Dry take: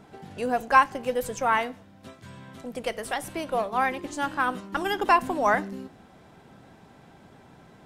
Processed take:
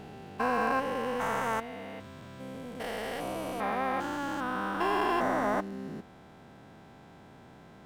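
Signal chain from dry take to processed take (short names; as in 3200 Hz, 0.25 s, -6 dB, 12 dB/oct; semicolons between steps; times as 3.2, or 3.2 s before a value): stepped spectrum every 0.4 s; decimation joined by straight lines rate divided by 2×; gain +1 dB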